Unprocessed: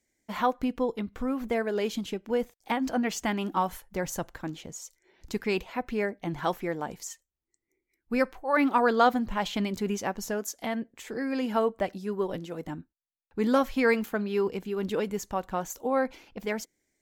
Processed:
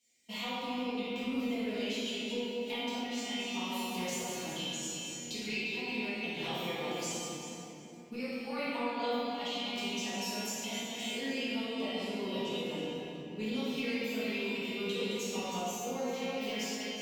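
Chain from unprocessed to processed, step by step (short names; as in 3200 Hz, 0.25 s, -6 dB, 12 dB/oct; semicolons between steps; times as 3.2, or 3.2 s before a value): regenerating reverse delay 0.183 s, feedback 46%, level -9.5 dB; HPF 92 Hz 12 dB/oct; resonant high shelf 2100 Hz +10.5 dB, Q 3; resonator 240 Hz, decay 0.73 s, mix 90%; compressor, threshold -48 dBFS, peak gain reduction 19 dB; bell 12000 Hz -5 dB 0.7 oct; shoebox room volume 200 m³, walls hard, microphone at 1.8 m; gain +4 dB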